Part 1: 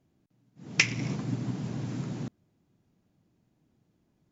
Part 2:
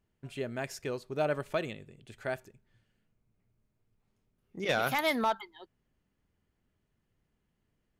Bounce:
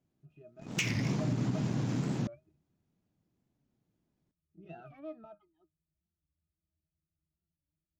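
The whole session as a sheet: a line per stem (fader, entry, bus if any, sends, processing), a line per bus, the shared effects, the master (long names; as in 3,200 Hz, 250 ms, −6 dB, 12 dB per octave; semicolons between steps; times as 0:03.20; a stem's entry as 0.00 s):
−5.0 dB, 0.00 s, no send, leveller curve on the samples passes 2; brickwall limiter −18 dBFS, peak gain reduction 11 dB
−10.5 dB, 0.00 s, no send, low-shelf EQ 380 Hz +7.5 dB; resonances in every octave D#, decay 0.12 s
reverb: not used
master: wow of a warped record 45 rpm, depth 160 cents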